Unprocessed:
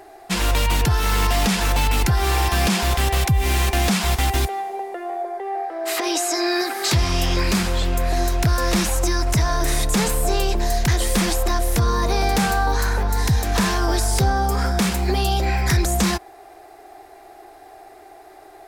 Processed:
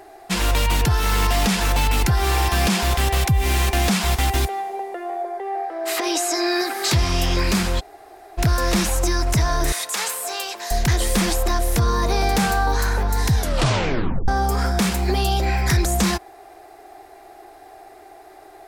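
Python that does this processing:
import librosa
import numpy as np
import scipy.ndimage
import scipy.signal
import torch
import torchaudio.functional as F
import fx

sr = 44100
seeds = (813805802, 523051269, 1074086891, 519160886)

y = fx.highpass(x, sr, hz=870.0, slope=12, at=(9.72, 10.71))
y = fx.edit(y, sr, fx.room_tone_fill(start_s=7.8, length_s=0.58, crossfade_s=0.02),
    fx.tape_stop(start_s=13.35, length_s=0.93), tone=tone)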